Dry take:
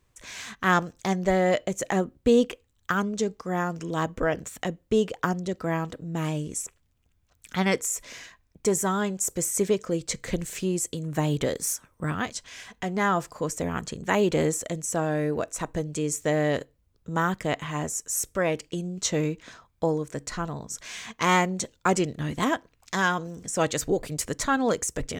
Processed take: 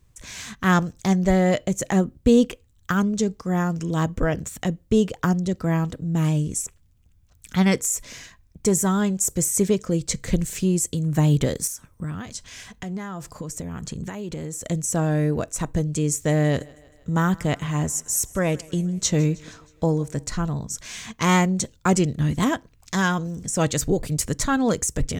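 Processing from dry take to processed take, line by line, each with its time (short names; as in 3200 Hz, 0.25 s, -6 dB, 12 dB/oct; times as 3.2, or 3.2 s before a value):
11.67–14.66 compressor, threshold -33 dBFS
16.13–20.3 thinning echo 0.158 s, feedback 58%, high-pass 220 Hz, level -22.5 dB
whole clip: tone controls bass +11 dB, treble +5 dB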